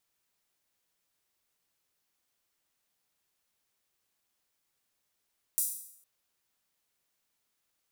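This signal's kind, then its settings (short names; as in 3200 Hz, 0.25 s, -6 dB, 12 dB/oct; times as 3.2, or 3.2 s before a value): open hi-hat length 0.46 s, high-pass 8800 Hz, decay 0.69 s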